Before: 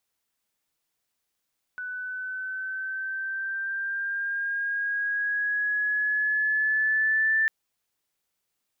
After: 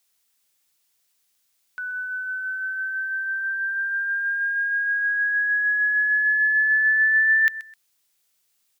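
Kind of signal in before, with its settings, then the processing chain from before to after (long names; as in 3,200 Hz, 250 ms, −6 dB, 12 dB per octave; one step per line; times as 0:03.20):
pitch glide with a swell sine, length 5.70 s, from 1,490 Hz, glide +3 semitones, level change +12 dB, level −19.5 dB
high-shelf EQ 2,000 Hz +11.5 dB
repeating echo 129 ms, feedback 25%, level −16 dB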